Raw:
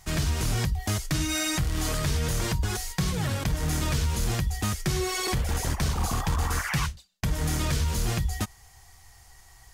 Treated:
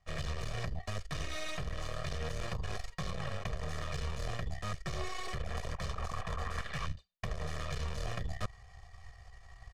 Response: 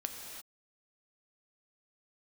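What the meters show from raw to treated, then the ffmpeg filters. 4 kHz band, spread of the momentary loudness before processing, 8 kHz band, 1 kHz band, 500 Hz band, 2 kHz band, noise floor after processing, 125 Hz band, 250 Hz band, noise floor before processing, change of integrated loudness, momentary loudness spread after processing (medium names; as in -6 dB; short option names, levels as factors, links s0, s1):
-12.0 dB, 3 LU, -18.5 dB, -8.5 dB, -8.0 dB, -9.5 dB, -55 dBFS, -12.5 dB, -15.5 dB, -54 dBFS, -12.0 dB, 5 LU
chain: -filter_complex "[0:a]aeval=exprs='0.15*(cos(1*acos(clip(val(0)/0.15,-1,1)))-cos(1*PI/2))+0.0422*(cos(3*acos(clip(val(0)/0.15,-1,1)))-cos(3*PI/2))+0.015*(cos(6*acos(clip(val(0)/0.15,-1,1)))-cos(6*PI/2))':c=same,acrossover=split=400|1900[s0][s1][s2];[s0]asoftclip=type=hard:threshold=0.0299[s3];[s3][s1][s2]amix=inputs=3:normalize=0,adynamicsmooth=sensitivity=5:basefreq=6000,aecho=1:1:1.7:0.7,areverse,acompressor=threshold=0.00501:ratio=16,areverse,highshelf=f=5300:g=-11.5,volume=4.73"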